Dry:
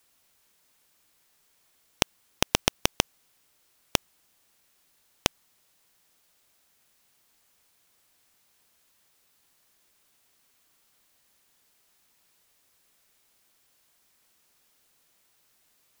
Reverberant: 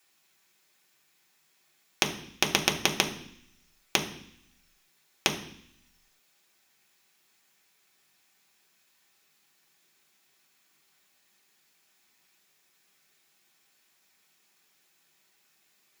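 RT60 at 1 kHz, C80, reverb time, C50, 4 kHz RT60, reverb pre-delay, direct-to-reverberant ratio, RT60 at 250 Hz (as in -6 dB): 0.70 s, 13.5 dB, 0.65 s, 11.0 dB, 0.85 s, 3 ms, 1.0 dB, 0.90 s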